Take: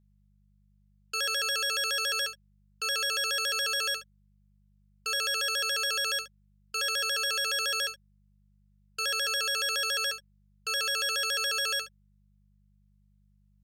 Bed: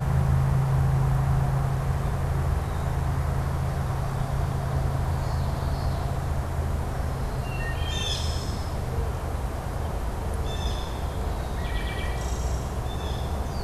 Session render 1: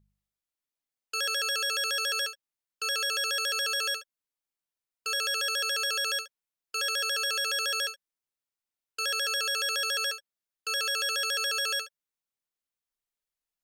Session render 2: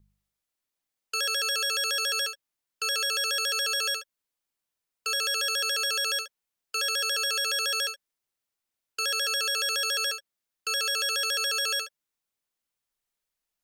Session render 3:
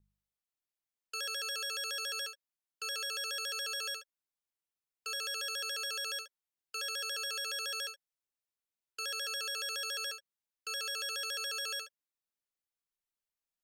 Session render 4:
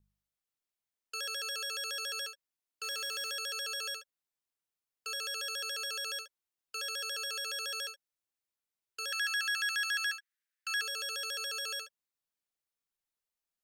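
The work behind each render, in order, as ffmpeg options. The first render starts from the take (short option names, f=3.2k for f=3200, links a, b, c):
-af "bandreject=f=50:t=h:w=4,bandreject=f=100:t=h:w=4,bandreject=f=150:t=h:w=4,bandreject=f=200:t=h:w=4"
-filter_complex "[0:a]asplit=2[a][b];[b]alimiter=level_in=2.5dB:limit=-24dB:level=0:latency=1,volume=-2.5dB,volume=-2.5dB[c];[a][c]amix=inputs=2:normalize=0,acrossover=split=450|3000[d][e][f];[e]acompressor=threshold=-31dB:ratio=6[g];[d][g][f]amix=inputs=3:normalize=0"
-af "volume=-10dB"
-filter_complex "[0:a]asettb=1/sr,asplit=3[a][b][c];[a]atrim=end=2.834[d];[b]atrim=start=2.83:end=3.33,asetpts=PTS-STARTPTS,afade=t=in:d=0.004:c=qsin,afade=t=out:st=0.496:d=0.004:c=qsin,acrusher=bits=4:mode=log:mix=0:aa=0.000001[e];[c]atrim=start=3.326[f];[d][e]acrossfade=d=0.004:c1=hsin:c2=qsin[g];[g][f]acrossfade=d=0.004:c1=qsin:c2=hsin,asettb=1/sr,asplit=3[h][i][j];[h]atrim=end=9.124[k];[i]atrim=start=9.12:end=10.82,asetpts=PTS-STARTPTS,afade=t=in:d=0.004:c=qsin,afade=t=out:st=1.696:d=0.004:c=qsin,highpass=f=1.7k:t=q:w=4[l];[j]atrim=start=10.816[m];[k][l]acrossfade=d=0.004:c1=hsin:c2=qsin[n];[n][m]acrossfade=d=0.004:c1=qsin:c2=hsin"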